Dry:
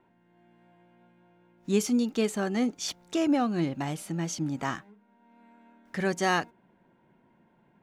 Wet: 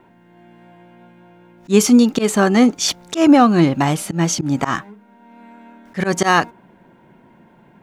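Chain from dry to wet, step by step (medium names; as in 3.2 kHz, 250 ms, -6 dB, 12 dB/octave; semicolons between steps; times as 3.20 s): dynamic bell 1.1 kHz, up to +5 dB, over -47 dBFS, Q 2.4; slow attack 103 ms; loudness maximiser +15.5 dB; trim -1 dB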